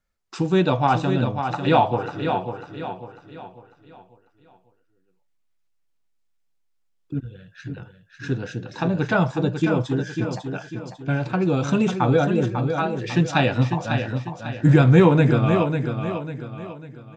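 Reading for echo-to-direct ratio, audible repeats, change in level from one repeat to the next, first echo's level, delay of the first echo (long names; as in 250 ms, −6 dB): −6.0 dB, 4, −8.0 dB, −7.0 dB, 547 ms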